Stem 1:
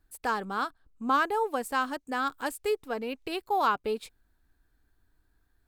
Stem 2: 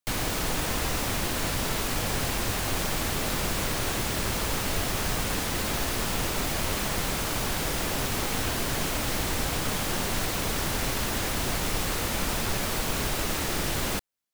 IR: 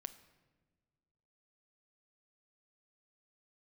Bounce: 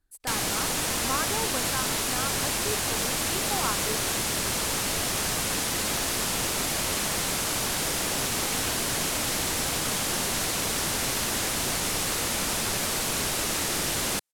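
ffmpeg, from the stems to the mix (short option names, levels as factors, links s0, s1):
-filter_complex "[0:a]volume=0.501[s0];[1:a]lowshelf=f=77:g=-11,adelay=200,volume=1[s1];[s0][s1]amix=inputs=2:normalize=0,lowpass=11000,aemphasis=mode=production:type=cd"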